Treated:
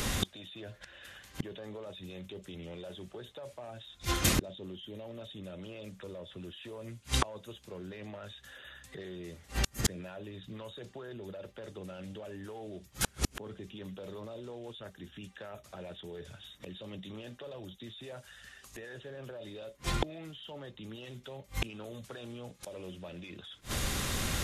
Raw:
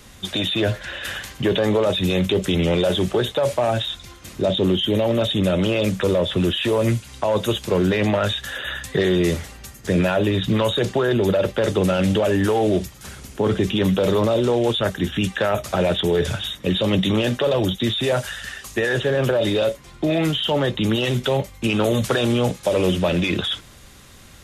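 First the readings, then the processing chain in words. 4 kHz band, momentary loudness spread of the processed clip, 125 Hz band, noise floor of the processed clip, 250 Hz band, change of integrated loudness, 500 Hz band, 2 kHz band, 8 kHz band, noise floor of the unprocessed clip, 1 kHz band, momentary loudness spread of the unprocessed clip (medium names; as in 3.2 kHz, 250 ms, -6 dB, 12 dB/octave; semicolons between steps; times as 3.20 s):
-16.5 dB, 14 LU, -18.0 dB, -60 dBFS, -21.5 dB, -19.0 dB, -24.0 dB, -16.0 dB, -4.0 dB, -45 dBFS, -16.5 dB, 6 LU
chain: inverted gate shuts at -26 dBFS, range -38 dB; upward compressor, threshold -56 dBFS; trim +12.5 dB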